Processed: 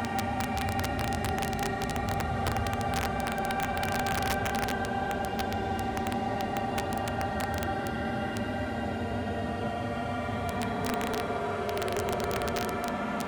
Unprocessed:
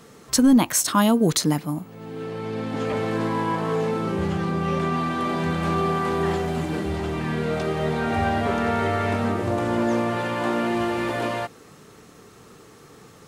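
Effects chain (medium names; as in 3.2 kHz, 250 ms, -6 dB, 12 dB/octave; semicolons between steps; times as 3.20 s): Paulstretch 36×, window 0.05 s, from 8.16 s; integer overflow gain 12.5 dB; trim -8.5 dB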